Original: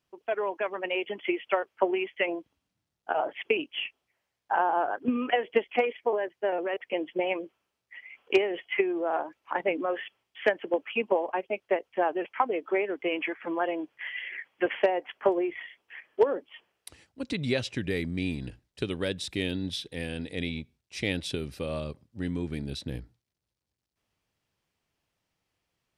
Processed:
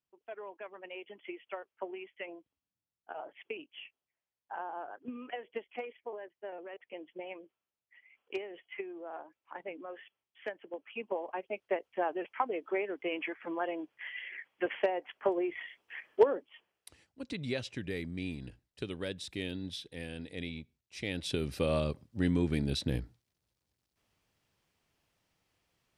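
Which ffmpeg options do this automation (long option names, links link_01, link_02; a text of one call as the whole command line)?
ffmpeg -i in.wav -af "volume=11.5dB,afade=type=in:start_time=10.77:duration=0.9:silence=0.354813,afade=type=in:start_time=15.27:duration=0.83:silence=0.446684,afade=type=out:start_time=16.1:duration=0.35:silence=0.375837,afade=type=in:start_time=21.11:duration=0.49:silence=0.298538" out.wav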